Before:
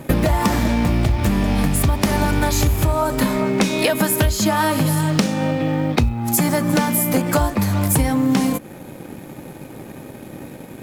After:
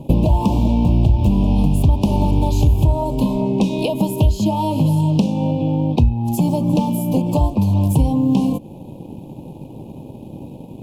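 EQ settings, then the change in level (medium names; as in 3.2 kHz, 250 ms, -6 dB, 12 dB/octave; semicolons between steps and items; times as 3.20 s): elliptic band-stop 980–2700 Hz, stop band 40 dB; tone controls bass +6 dB, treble -12 dB; -1.5 dB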